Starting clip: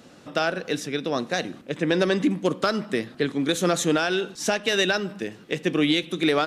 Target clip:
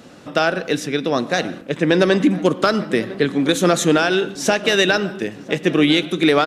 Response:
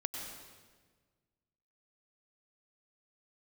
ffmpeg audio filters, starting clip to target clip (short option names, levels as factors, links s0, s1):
-filter_complex "[0:a]asplit=2[s0][s1];[s1]adelay=1004,lowpass=f=1500:p=1,volume=0.141,asplit=2[s2][s3];[s3]adelay=1004,lowpass=f=1500:p=1,volume=0.55,asplit=2[s4][s5];[s5]adelay=1004,lowpass=f=1500:p=1,volume=0.55,asplit=2[s6][s7];[s7]adelay=1004,lowpass=f=1500:p=1,volume=0.55,asplit=2[s8][s9];[s9]adelay=1004,lowpass=f=1500:p=1,volume=0.55[s10];[s0][s2][s4][s6][s8][s10]amix=inputs=6:normalize=0,asplit=2[s11][s12];[1:a]atrim=start_sample=2205,afade=t=out:st=0.23:d=0.01,atrim=end_sample=10584,lowpass=3800[s13];[s12][s13]afir=irnorm=-1:irlink=0,volume=0.237[s14];[s11][s14]amix=inputs=2:normalize=0,volume=1.78"